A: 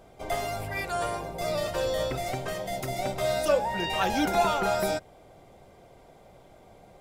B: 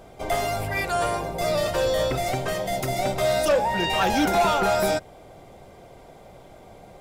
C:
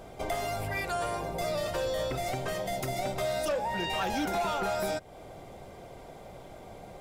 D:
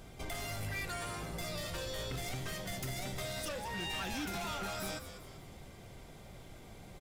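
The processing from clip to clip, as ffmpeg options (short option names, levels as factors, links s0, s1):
-af "asoftclip=type=tanh:threshold=0.0944,volume=2.11"
-af "acompressor=threshold=0.0224:ratio=2.5"
-filter_complex "[0:a]equalizer=f=630:w=0.73:g=-12.5,asoftclip=type=tanh:threshold=0.0211,asplit=2[s0][s1];[s1]asplit=5[s2][s3][s4][s5][s6];[s2]adelay=194,afreqshift=-110,volume=0.316[s7];[s3]adelay=388,afreqshift=-220,volume=0.14[s8];[s4]adelay=582,afreqshift=-330,volume=0.061[s9];[s5]adelay=776,afreqshift=-440,volume=0.0269[s10];[s6]adelay=970,afreqshift=-550,volume=0.0119[s11];[s7][s8][s9][s10][s11]amix=inputs=5:normalize=0[s12];[s0][s12]amix=inputs=2:normalize=0"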